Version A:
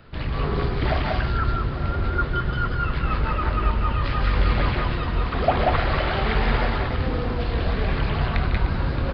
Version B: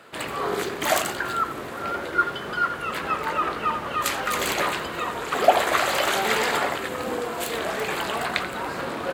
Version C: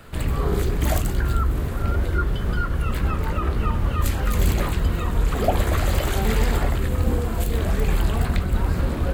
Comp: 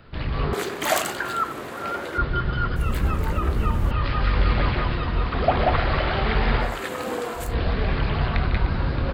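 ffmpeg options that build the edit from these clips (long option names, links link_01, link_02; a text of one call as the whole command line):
ffmpeg -i take0.wav -i take1.wav -i take2.wav -filter_complex "[1:a]asplit=2[link_01][link_02];[0:a]asplit=4[link_03][link_04][link_05][link_06];[link_03]atrim=end=0.532[link_07];[link_01]atrim=start=0.528:end=2.182[link_08];[link_04]atrim=start=2.178:end=2.762[link_09];[2:a]atrim=start=2.758:end=3.912[link_10];[link_05]atrim=start=3.908:end=6.83[link_11];[link_02]atrim=start=6.59:end=7.56[link_12];[link_06]atrim=start=7.32[link_13];[link_07][link_08]acrossfade=duration=0.004:curve1=hsin:curve2=hsin[link_14];[link_14][link_09]acrossfade=duration=0.004:curve1=hsin:curve2=hsin[link_15];[link_15][link_10]acrossfade=duration=0.004:curve1=hsin:curve2=hsin[link_16];[link_16][link_11]acrossfade=duration=0.004:curve1=hsin:curve2=hsin[link_17];[link_17][link_12]acrossfade=duration=0.24:curve1=tri:curve2=tri[link_18];[link_18][link_13]acrossfade=duration=0.24:curve1=tri:curve2=tri" out.wav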